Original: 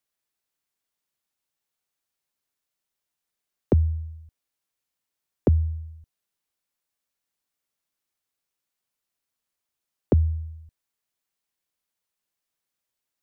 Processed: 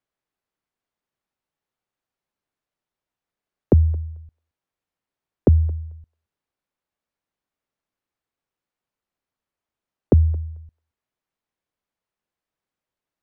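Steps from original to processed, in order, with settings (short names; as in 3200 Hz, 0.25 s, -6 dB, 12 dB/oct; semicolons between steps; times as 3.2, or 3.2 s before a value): LPF 1200 Hz 6 dB/oct; on a send: thinning echo 0.221 s, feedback 20%, high-pass 930 Hz, level -19 dB; on the sum: gain +5 dB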